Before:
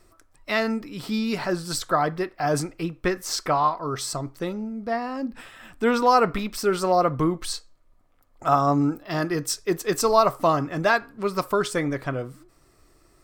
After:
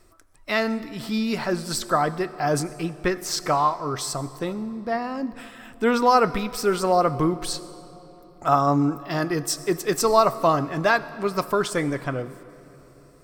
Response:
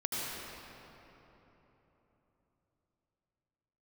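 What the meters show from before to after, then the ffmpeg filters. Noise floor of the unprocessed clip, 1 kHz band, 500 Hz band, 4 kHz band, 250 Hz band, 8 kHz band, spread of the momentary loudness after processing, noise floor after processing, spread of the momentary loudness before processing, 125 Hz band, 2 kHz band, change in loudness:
-60 dBFS, +0.5 dB, +0.5 dB, +1.0 dB, +1.0 dB, +1.0 dB, 11 LU, -50 dBFS, 11 LU, +1.0 dB, +0.5 dB, +0.5 dB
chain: -filter_complex "[0:a]asplit=2[a][b];[b]equalizer=f=11k:t=o:w=1.4:g=8[c];[1:a]atrim=start_sample=2205[d];[c][d]afir=irnorm=-1:irlink=0,volume=-21.5dB[e];[a][e]amix=inputs=2:normalize=0"

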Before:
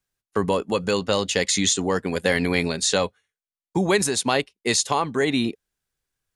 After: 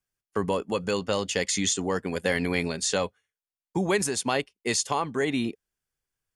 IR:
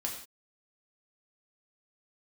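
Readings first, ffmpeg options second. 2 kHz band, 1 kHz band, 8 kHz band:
-4.5 dB, -4.5 dB, -4.5 dB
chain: -af "bandreject=f=3.9k:w=7.9,volume=-4.5dB"

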